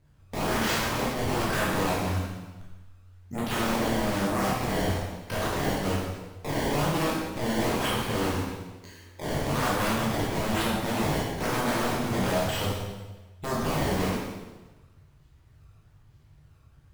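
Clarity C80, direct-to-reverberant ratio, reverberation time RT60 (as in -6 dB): 2.5 dB, -6.5 dB, 1.2 s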